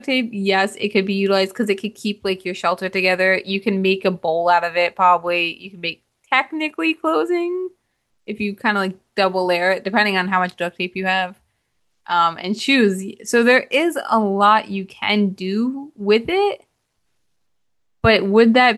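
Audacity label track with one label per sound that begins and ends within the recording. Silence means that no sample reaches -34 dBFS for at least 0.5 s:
8.280000	11.320000	sound
12.070000	16.560000	sound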